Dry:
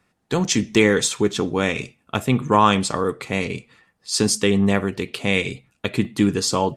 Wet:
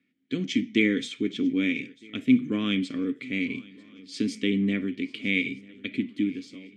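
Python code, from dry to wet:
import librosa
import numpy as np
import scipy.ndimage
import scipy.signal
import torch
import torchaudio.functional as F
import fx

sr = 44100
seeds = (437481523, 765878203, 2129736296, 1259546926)

y = fx.fade_out_tail(x, sr, length_s=0.95)
y = fx.hpss(y, sr, part='harmonic', gain_db=3)
y = fx.vowel_filter(y, sr, vowel='i')
y = fx.echo_swing(y, sr, ms=1259, ratio=3, feedback_pct=43, wet_db=-23.5)
y = F.gain(torch.from_numpy(y), 4.0).numpy()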